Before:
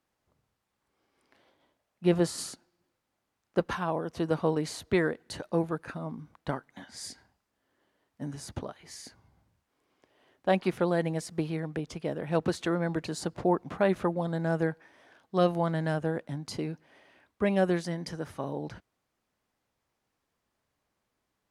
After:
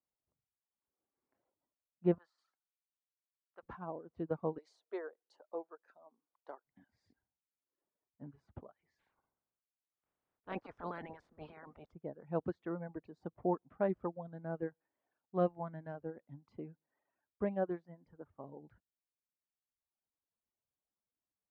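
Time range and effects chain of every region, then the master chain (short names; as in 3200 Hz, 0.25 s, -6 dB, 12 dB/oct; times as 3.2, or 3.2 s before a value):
2.18–3.63 HPF 1200 Hz + high shelf 7100 Hz -5.5 dB
4.58–6.65 HPF 410 Hz 24 dB/oct + resonant high shelf 3700 Hz +12 dB, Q 1.5
8.98–11.9 spectral limiter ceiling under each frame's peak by 24 dB + transient shaper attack -9 dB, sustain +6 dB
17.45–18.44 tone controls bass -1 dB, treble -6 dB + mismatched tape noise reduction decoder only
whole clip: reverb removal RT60 1.5 s; LPF 1200 Hz 12 dB/oct; upward expander 1.5:1, over -42 dBFS; gain -5 dB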